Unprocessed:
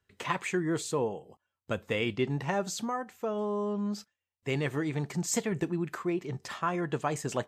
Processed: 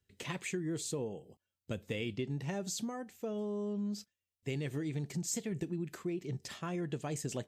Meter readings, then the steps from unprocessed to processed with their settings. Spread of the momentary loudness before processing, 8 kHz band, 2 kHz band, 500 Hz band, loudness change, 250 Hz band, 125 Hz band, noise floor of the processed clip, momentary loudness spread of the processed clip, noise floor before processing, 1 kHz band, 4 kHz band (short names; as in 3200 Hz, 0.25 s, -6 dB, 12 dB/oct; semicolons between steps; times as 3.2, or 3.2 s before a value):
5 LU, -3.5 dB, -9.5 dB, -7.5 dB, -6.0 dB, -5.0 dB, -4.0 dB, under -85 dBFS, 6 LU, under -85 dBFS, -14.0 dB, -5.0 dB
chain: bell 1100 Hz -14.5 dB 1.7 oct; compressor, threshold -33 dBFS, peak gain reduction 7 dB